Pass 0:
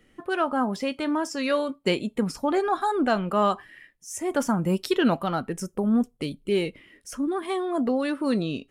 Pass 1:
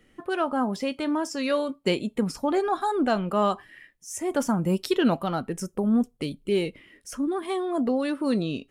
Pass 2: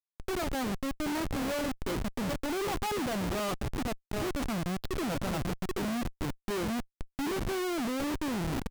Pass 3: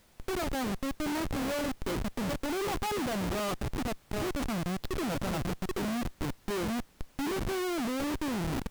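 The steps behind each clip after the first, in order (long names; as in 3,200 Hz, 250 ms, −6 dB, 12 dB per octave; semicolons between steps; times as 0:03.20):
dynamic equaliser 1,600 Hz, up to −3 dB, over −38 dBFS, Q 0.96
repeating echo 780 ms, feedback 21%, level −9 dB; low-pass that shuts in the quiet parts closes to 1,200 Hz, open at −18.5 dBFS; comparator with hysteresis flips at −28.5 dBFS; level −4.5 dB
background noise pink −62 dBFS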